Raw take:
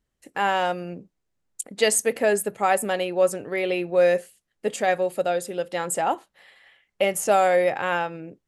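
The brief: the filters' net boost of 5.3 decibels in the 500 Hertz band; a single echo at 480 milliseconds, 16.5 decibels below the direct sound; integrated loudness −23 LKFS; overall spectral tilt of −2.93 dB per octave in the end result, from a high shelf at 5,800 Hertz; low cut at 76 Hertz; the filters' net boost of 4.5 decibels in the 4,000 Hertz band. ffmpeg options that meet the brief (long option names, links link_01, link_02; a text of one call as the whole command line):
ffmpeg -i in.wav -af "highpass=76,equalizer=frequency=500:width_type=o:gain=6,equalizer=frequency=4000:width_type=o:gain=7.5,highshelf=frequency=5800:gain=-3,aecho=1:1:480:0.15,volume=-4dB" out.wav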